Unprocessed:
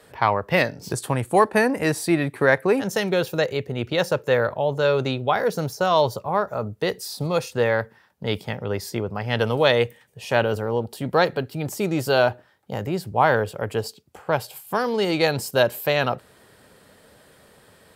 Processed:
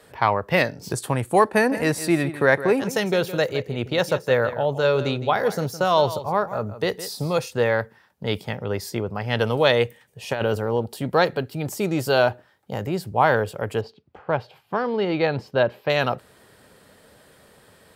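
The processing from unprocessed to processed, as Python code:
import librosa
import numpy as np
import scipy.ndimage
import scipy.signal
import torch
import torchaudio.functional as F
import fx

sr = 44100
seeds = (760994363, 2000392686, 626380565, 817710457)

y = fx.echo_single(x, sr, ms=162, db=-13.5, at=(1.6, 7.39), fade=0.02)
y = fx.over_compress(y, sr, threshold_db=-21.0, ratio=-0.5, at=(10.28, 11.06))
y = fx.air_absorb(y, sr, metres=290.0, at=(13.81, 15.9))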